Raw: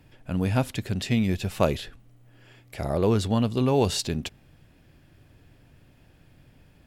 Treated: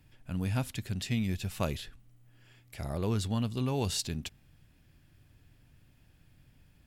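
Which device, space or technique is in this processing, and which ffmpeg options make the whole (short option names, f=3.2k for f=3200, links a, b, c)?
smiley-face EQ: -af "lowshelf=f=120:g=3.5,equalizer=f=500:t=o:w=1.7:g=-6,highshelf=f=5.6k:g=5.5,volume=-7dB"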